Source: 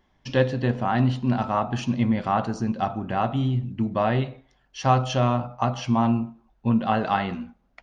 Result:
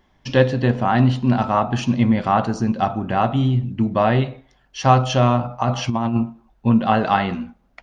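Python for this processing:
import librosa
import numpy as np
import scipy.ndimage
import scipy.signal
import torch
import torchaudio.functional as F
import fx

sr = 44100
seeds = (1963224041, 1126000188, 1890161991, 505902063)

y = fx.over_compress(x, sr, threshold_db=-23.0, ratio=-0.5, at=(5.44, 6.22), fade=0.02)
y = y * librosa.db_to_amplitude(5.5)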